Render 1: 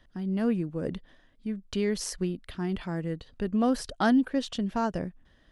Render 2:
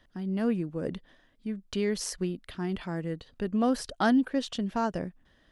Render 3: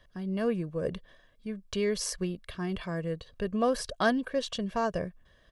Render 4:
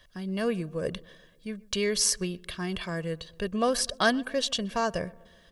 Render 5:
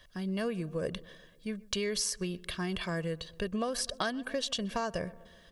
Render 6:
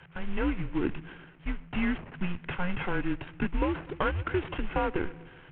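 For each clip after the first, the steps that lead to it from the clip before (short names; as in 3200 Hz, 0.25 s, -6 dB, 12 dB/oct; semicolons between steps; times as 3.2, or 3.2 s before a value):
low shelf 120 Hz -5.5 dB
comb 1.8 ms, depth 58%
high shelf 2000 Hz +10.5 dB; darkening echo 0.124 s, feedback 59%, low-pass 1500 Hz, level -22 dB
compressor 12:1, threshold -29 dBFS, peak gain reduction 12 dB
CVSD 16 kbps; frequency shift -180 Hz; gain +6 dB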